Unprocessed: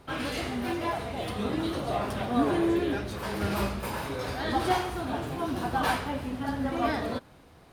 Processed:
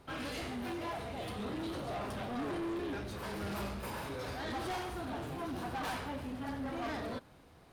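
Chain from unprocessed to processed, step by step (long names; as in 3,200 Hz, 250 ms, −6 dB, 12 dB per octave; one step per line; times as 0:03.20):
soft clipping −29.5 dBFS, distortion −9 dB
level −5 dB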